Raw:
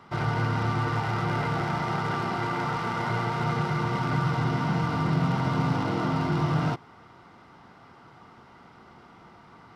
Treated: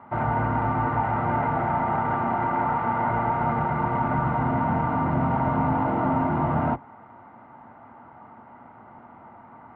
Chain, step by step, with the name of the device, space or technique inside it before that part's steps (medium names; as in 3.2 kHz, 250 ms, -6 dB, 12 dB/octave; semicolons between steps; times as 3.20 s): sub-octave bass pedal (octave divider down 1 oct, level -4 dB; cabinet simulation 64–2100 Hz, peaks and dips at 72 Hz -8 dB, 170 Hz -5 dB, 240 Hz +8 dB, 410 Hz -4 dB, 620 Hz +8 dB, 880 Hz +9 dB)